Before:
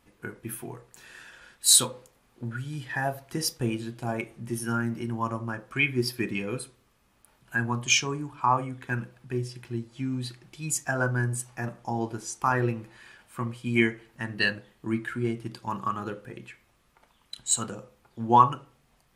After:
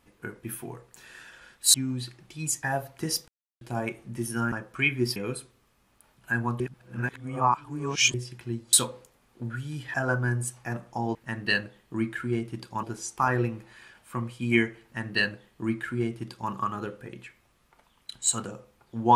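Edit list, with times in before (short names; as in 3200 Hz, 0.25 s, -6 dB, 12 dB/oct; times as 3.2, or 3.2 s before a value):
1.74–2.95 swap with 9.97–10.86
3.6–3.93 mute
4.84–5.49 cut
6.13–6.4 cut
7.84–9.38 reverse
14.07–15.75 copy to 12.07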